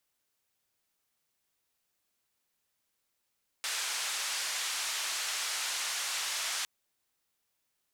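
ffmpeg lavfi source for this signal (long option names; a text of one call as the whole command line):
ffmpeg -f lavfi -i "anoisesrc=color=white:duration=3.01:sample_rate=44100:seed=1,highpass=frequency=1000,lowpass=frequency=7500,volume=-24.5dB" out.wav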